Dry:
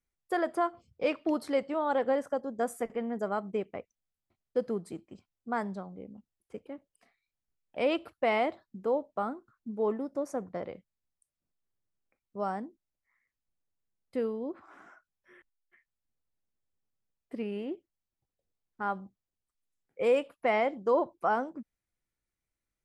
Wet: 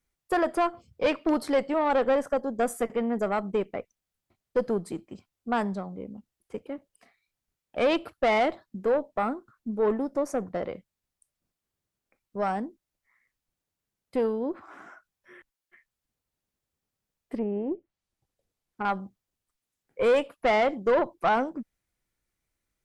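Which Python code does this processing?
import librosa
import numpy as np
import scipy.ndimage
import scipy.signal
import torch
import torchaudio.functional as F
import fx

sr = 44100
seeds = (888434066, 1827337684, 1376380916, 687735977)

y = fx.env_lowpass_down(x, sr, base_hz=880.0, full_db=-35.0, at=(17.36, 18.85))
y = fx.tube_stage(y, sr, drive_db=24.0, bias=0.3)
y = y * librosa.db_to_amplitude(7.5)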